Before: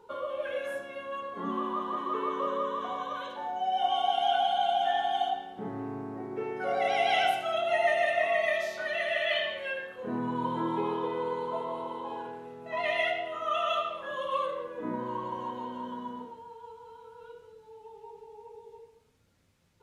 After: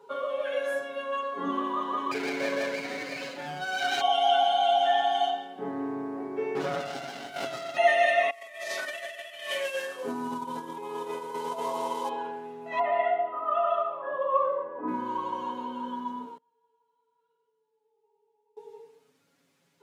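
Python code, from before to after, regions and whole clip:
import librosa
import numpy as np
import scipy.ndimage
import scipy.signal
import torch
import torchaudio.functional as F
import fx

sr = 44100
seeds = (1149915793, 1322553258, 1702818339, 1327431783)

y = fx.chain(x, sr, fx.lower_of_two(delay_ms=0.44),
    fx.notch(hz=1900.0, q=24.0),
    fx.doubler(ms=40.0, db=-12.0), at=(2.11, 4.01))
y = fx.chain(y, sr, fx.room_flutter(wall_m=3.6, rt60_s=0.43),
    fx.over_compress(threshold_db=-33.0, ratio=-1.0),
    fx.running_max(window=33), at=(6.55, 7.77))
y = fx.chain(y, sr, fx.cvsd(bps=64000),
    fx.low_shelf(hz=340.0, db=-4.5),
    fx.over_compress(threshold_db=-36.0, ratio=-0.5), at=(8.3, 12.09))
y = fx.chain(y, sr, fx.lowpass_res(hz=1000.0, q=1.5),
    fx.low_shelf(hz=95.0, db=-11.0), at=(12.79, 14.88))
y = fx.chain(y, sr, fx.echo_split(split_hz=480.0, low_ms=158, high_ms=101, feedback_pct=52, wet_db=-4.5),
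    fx.gate_flip(shuts_db=-48.0, range_db=-29), at=(16.37, 18.57))
y = scipy.signal.sosfilt(scipy.signal.butter(4, 180.0, 'highpass', fs=sr, output='sos'), y)
y = y + 0.95 * np.pad(y, (int(7.2 * sr / 1000.0), 0))[:len(y)]
y = fx.dynamic_eq(y, sr, hz=5600.0, q=0.92, threshold_db=-49.0, ratio=4.0, max_db=4)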